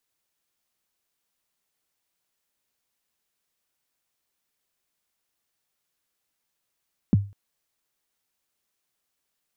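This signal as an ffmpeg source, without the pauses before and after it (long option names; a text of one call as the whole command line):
ffmpeg -f lavfi -i "aevalsrc='0.282*pow(10,-3*t/0.32)*sin(2*PI*(270*0.023/log(100/270)*(exp(log(100/270)*min(t,0.023)/0.023)-1)+100*max(t-0.023,0)))':duration=0.2:sample_rate=44100" out.wav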